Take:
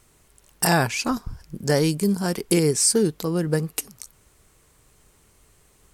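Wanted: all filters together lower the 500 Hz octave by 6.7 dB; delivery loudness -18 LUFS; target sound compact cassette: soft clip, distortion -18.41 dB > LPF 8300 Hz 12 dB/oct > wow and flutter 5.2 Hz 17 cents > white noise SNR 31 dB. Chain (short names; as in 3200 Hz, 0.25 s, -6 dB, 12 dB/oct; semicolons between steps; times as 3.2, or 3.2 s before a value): bell 500 Hz -8.5 dB; soft clip -14 dBFS; LPF 8300 Hz 12 dB/oct; wow and flutter 5.2 Hz 17 cents; white noise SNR 31 dB; gain +8 dB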